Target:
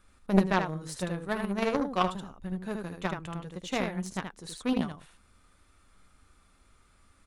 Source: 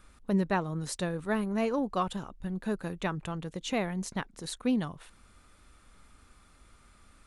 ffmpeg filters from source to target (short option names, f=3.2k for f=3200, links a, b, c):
-af "aecho=1:1:11|77:0.335|0.668,aeval=exprs='0.2*(cos(1*acos(clip(val(0)/0.2,-1,1)))-cos(1*PI/2))+0.0501*(cos(3*acos(clip(val(0)/0.2,-1,1)))-cos(3*PI/2))':c=same,volume=6.5dB"